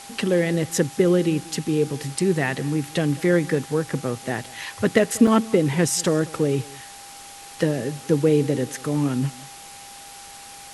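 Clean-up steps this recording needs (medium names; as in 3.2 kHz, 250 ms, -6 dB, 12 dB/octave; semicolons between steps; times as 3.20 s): band-stop 800 Hz, Q 30; interpolate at 4.44/5.27 s, 3.8 ms; noise reduction 25 dB, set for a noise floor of -41 dBFS; inverse comb 190 ms -22 dB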